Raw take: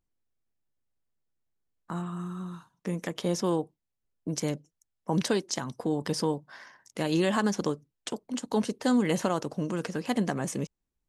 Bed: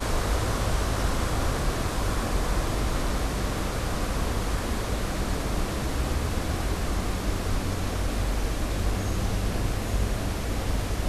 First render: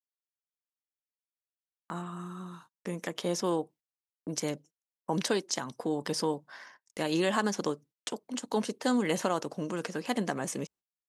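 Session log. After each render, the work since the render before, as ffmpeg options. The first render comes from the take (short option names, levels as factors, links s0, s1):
-af "highpass=f=300:p=1,agate=range=0.0251:threshold=0.002:ratio=16:detection=peak"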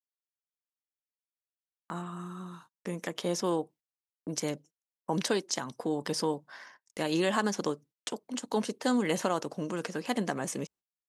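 -af anull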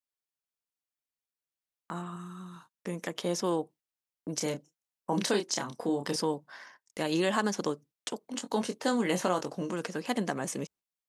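-filter_complex "[0:a]asettb=1/sr,asplit=3[s0][s1][s2];[s0]atrim=end=2.164[s3];[s1]atrim=start=2.16:end=2.56,asetpts=PTS-STARTPTS,afade=t=in:d=0.004:c=qsin,afade=t=out:st=0.396:d=0.004:c=qsin,equalizer=f=530:t=o:w=1.9:g=-7.5[s4];[s2]atrim=start=2.556[s5];[s3][s4]acrossfade=d=0.004:c1=hsin:c2=qsin[s6];[s6][s5]acrossfade=d=0.004:c1=qsin:c2=hsin,asettb=1/sr,asplit=3[s7][s8][s9];[s7]atrim=end=4.374[s10];[s8]atrim=start=4.37:end=6.16,asetpts=PTS-STARTPTS,afade=t=in:d=0.004:c=qsin,afade=t=out:st=1.786:d=0.004:c=qsin,asplit=2[s11][s12];[s12]adelay=29,volume=0.531[s13];[s11][s13]amix=inputs=2:normalize=0,atrim=end_sample=78939[s14];[s9]atrim=start=6.156[s15];[s10][s14]acrossfade=d=0.004:c1=hsin:c2=qsin[s16];[s16][s15]acrossfade=d=0.004:c1=qsin:c2=hsin,asettb=1/sr,asplit=3[s17][s18][s19];[s17]atrim=end=8.194[s20];[s18]atrim=start=8.19:end=9.74,asetpts=PTS-STARTPTS,afade=t=in:d=0.004:c=qsin,afade=t=out:st=1.546:d=0.004:c=qsin,asplit=2[s21][s22];[s22]adelay=22,volume=0.422[s23];[s21][s23]amix=inputs=2:normalize=0,atrim=end_sample=68355[s24];[s19]atrim=start=9.736[s25];[s20][s24]acrossfade=d=0.004:c1=hsin:c2=qsin[s26];[s26][s25]acrossfade=d=0.004:c1=qsin:c2=hsin"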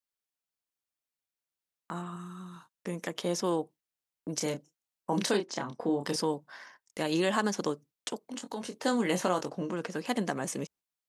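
-filter_complex "[0:a]asettb=1/sr,asplit=3[s0][s1][s2];[s0]atrim=end=5.374[s3];[s1]atrim=start=5.37:end=6.01,asetpts=PTS-STARTPTS,afade=t=in:d=0.004:c=qsin,afade=t=out:st=0.636:d=0.004:c=qsin,aemphasis=mode=reproduction:type=75fm[s4];[s2]atrim=start=6.006[s5];[s3][s4]acrossfade=d=0.004:c1=hsin:c2=qsin[s6];[s6][s5]acrossfade=d=0.004:c1=qsin:c2=hsin,asettb=1/sr,asplit=3[s7][s8][s9];[s7]atrim=end=8.214[s10];[s8]atrim=start=8.21:end=8.74,asetpts=PTS-STARTPTS,afade=t=in:d=0.004:c=qsin,afade=t=out:st=0.526:d=0.004:c=qsin,acompressor=threshold=0.0158:ratio=2.5:attack=3.2:release=140:knee=1:detection=peak[s11];[s9]atrim=start=8.736[s12];[s10][s11]acrossfade=d=0.004:c1=hsin:c2=qsin[s13];[s13][s12]acrossfade=d=0.004:c1=qsin:c2=hsin,asettb=1/sr,asplit=3[s14][s15][s16];[s14]atrim=end=9.494[s17];[s15]atrim=start=9.49:end=9.9,asetpts=PTS-STARTPTS,afade=t=in:d=0.004:c=qsin,afade=t=out:st=0.406:d=0.004:c=qsin,highshelf=f=5200:g=-11.5[s18];[s16]atrim=start=9.896[s19];[s17][s18]acrossfade=d=0.004:c1=hsin:c2=qsin[s20];[s20][s19]acrossfade=d=0.004:c1=qsin:c2=hsin"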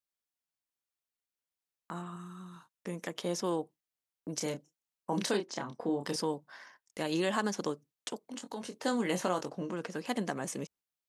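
-af "volume=0.708"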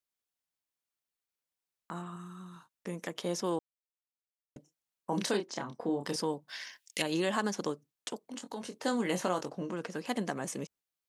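-filter_complex "[0:a]asettb=1/sr,asplit=3[s0][s1][s2];[s0]atrim=end=6.484[s3];[s1]atrim=start=6.48:end=7.02,asetpts=PTS-STARTPTS,afade=t=in:d=0.004:c=qsin,afade=t=out:st=0.536:d=0.004:c=qsin,highshelf=f=1800:t=q:w=1.5:g=13[s4];[s2]atrim=start=7.016[s5];[s3][s4]acrossfade=d=0.004:c1=hsin:c2=qsin[s6];[s6][s5]acrossfade=d=0.004:c1=qsin:c2=hsin,asplit=3[s7][s8][s9];[s7]atrim=end=3.59,asetpts=PTS-STARTPTS,afade=t=out:st=3.586:d=0.004:c=hsin[s10];[s8]atrim=start=3.59:end=4.56,asetpts=PTS-STARTPTS,volume=0[s11];[s9]atrim=start=4.56,asetpts=PTS-STARTPTS,afade=t=in:d=0.004:c=hsin[s12];[s10][s11][s12]concat=n=3:v=0:a=1"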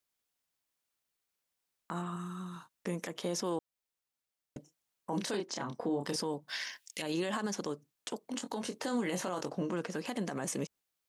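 -filter_complex "[0:a]asplit=2[s0][s1];[s1]acompressor=threshold=0.01:ratio=6,volume=0.841[s2];[s0][s2]amix=inputs=2:normalize=0,alimiter=level_in=1.12:limit=0.0631:level=0:latency=1:release=53,volume=0.891"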